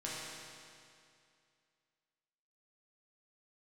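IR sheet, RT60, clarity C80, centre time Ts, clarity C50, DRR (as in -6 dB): 2.4 s, -1.0 dB, 152 ms, -3.0 dB, -7.5 dB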